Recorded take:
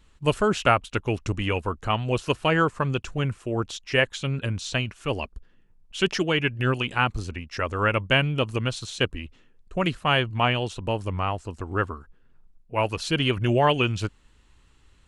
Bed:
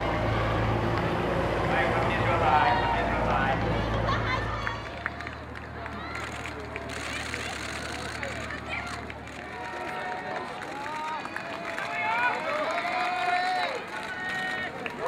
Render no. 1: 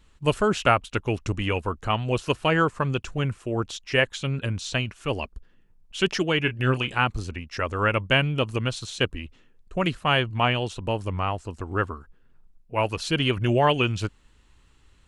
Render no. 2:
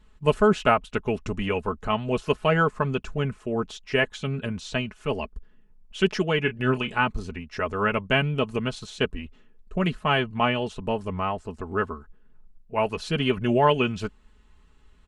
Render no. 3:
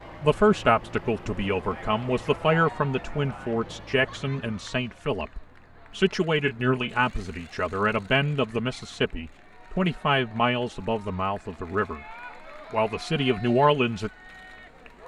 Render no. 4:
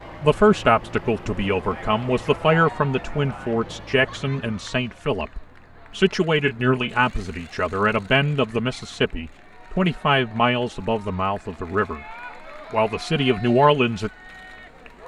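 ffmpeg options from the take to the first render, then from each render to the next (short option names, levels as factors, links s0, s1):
-filter_complex "[0:a]asettb=1/sr,asplit=3[s0][s1][s2];[s0]atrim=end=6.424[s3];[s1]atrim=start=6.42:end=6.98,asetpts=PTS-STARTPTS,afade=t=in:d=0.004:c=qsin,afade=t=out:st=0.556:d=0.004:c=qsin,asplit=2[s4][s5];[s5]adelay=31,volume=0.266[s6];[s4][s6]amix=inputs=2:normalize=0,atrim=end_sample=24696[s7];[s2]atrim=start=6.976[s8];[s3][s7]acrossfade=d=0.004:c1=hsin:c2=qsin[s9];[s9][s8]acrossfade=d=0.004:c1=qsin:c2=hsin"
-af "highshelf=f=2600:g=-8.5,aecho=1:1:4.7:0.59"
-filter_complex "[1:a]volume=0.178[s0];[0:a][s0]amix=inputs=2:normalize=0"
-af "volume=1.58,alimiter=limit=0.794:level=0:latency=1"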